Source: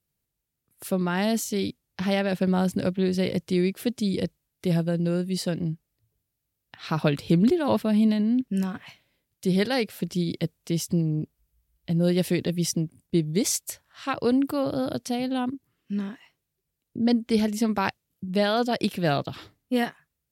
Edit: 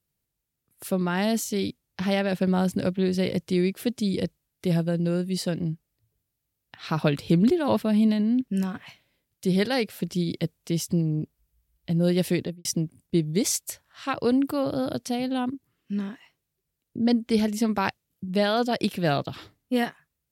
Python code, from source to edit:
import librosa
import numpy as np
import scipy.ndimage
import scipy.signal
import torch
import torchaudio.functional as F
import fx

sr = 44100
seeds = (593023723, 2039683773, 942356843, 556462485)

y = fx.studio_fade_out(x, sr, start_s=12.35, length_s=0.3)